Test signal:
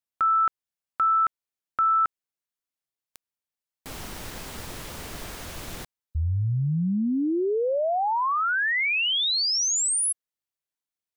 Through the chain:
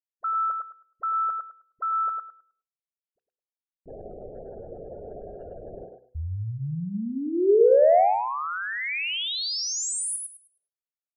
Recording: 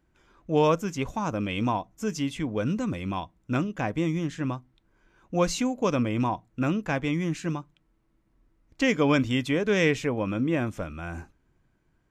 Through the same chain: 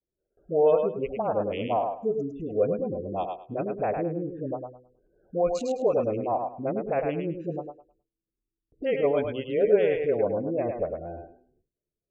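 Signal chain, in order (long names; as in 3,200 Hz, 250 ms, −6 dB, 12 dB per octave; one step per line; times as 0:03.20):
adaptive Wiener filter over 41 samples
gate on every frequency bin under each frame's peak −25 dB strong
brickwall limiter −21 dBFS
low-shelf EQ 390 Hz −4 dB
hum removal 62.66 Hz, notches 8
all-pass dispersion highs, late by 42 ms, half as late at 550 Hz
on a send: feedback echo with a high-pass in the loop 104 ms, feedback 24%, high-pass 320 Hz, level −4 dB
on the sum: noise gate with hold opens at −57 dBFS, closes at −61 dBFS, hold 169 ms, range −18 dB
flat-topped bell 540 Hz +14 dB 1.2 octaves
level −2 dB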